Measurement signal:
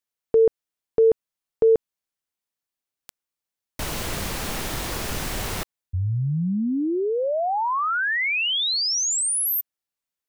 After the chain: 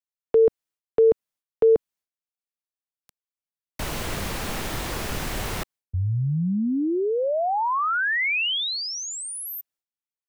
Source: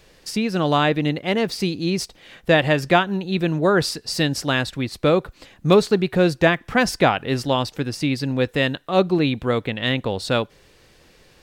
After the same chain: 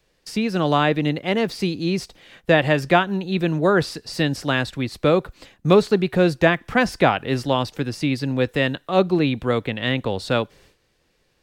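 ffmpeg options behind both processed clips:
-filter_complex "[0:a]agate=range=0.224:threshold=0.01:ratio=3:release=342:detection=peak,acrossover=split=250|1500|3300[s0][s1][s2][s3];[s3]acompressor=threshold=0.0224:ratio=6:attack=0.96:release=45:knee=6:detection=peak[s4];[s0][s1][s2][s4]amix=inputs=4:normalize=0"

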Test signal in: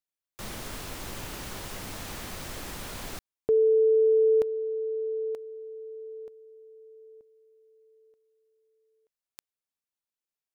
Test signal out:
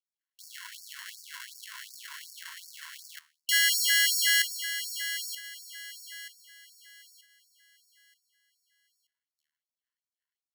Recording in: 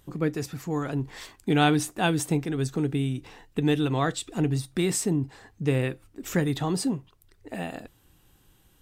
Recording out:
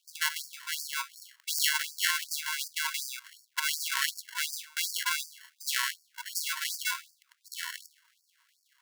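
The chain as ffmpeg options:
-af "bandreject=f=75.25:t=h:w=4,bandreject=f=150.5:t=h:w=4,bandreject=f=225.75:t=h:w=4,bandreject=f=301:t=h:w=4,bandreject=f=376.25:t=h:w=4,bandreject=f=451.5:t=h:w=4,bandreject=f=526.75:t=h:w=4,bandreject=f=602:t=h:w=4,bandreject=f=677.25:t=h:w=4,acrusher=samples=36:mix=1:aa=0.000001,afftfilt=real='re*gte(b*sr/1024,920*pow(4500/920,0.5+0.5*sin(2*PI*2.7*pts/sr)))':imag='im*gte(b*sr/1024,920*pow(4500/920,0.5+0.5*sin(2*PI*2.7*pts/sr)))':win_size=1024:overlap=0.75,volume=2"

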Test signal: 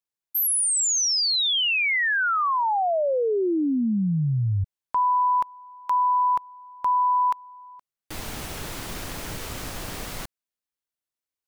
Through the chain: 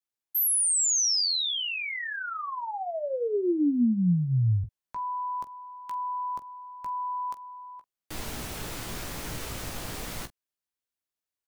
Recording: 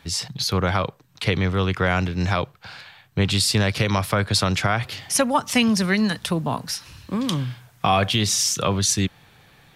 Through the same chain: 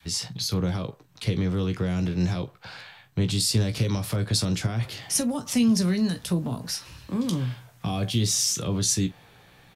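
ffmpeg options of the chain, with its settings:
-filter_complex "[0:a]adynamicequalizer=threshold=0.0178:dfrequency=500:dqfactor=0.8:tfrequency=500:tqfactor=0.8:attack=5:release=100:ratio=0.375:range=2.5:mode=boostabove:tftype=bell,acrossover=split=320|4300[s0][s1][s2];[s1]acompressor=threshold=0.0251:ratio=6:attack=0.25:release=119:knee=2.83:detection=peak[s3];[s0][s3][s2]amix=inputs=3:normalize=0,aecho=1:1:17|45:0.398|0.15,volume=0.75"

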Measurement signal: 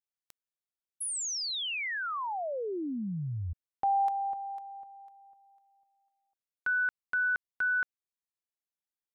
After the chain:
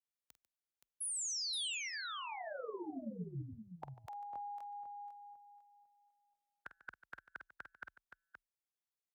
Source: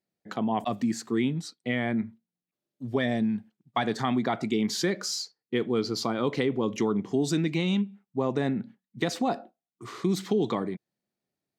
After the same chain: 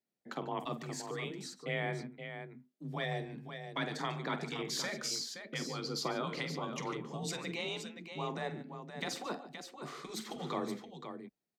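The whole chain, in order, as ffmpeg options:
-af "afftfilt=real='re*lt(hypot(re,im),0.251)':imag='im*lt(hypot(re,im),0.251)':win_size=1024:overlap=0.75,afreqshift=27,aecho=1:1:48|145|522:0.237|0.158|0.376,volume=0.531"

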